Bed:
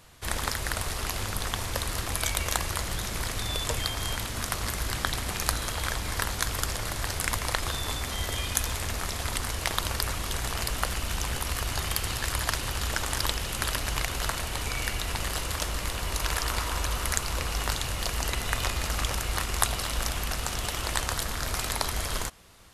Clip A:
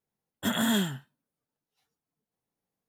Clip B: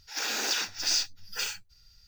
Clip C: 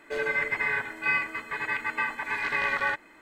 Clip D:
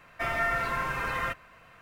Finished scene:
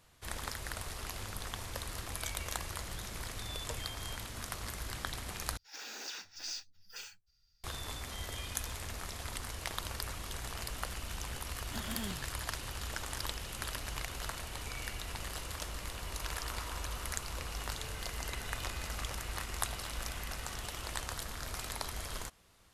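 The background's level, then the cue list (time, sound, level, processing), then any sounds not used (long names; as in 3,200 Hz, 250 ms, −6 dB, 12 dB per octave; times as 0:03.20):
bed −10.5 dB
0:05.57: overwrite with B −14.5 dB
0:11.29: mix in A −16 dB + regular buffer underruns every 0.16 s repeat
0:17.68: mix in C −15.5 dB + downward compressor, threshold −34 dBFS
not used: D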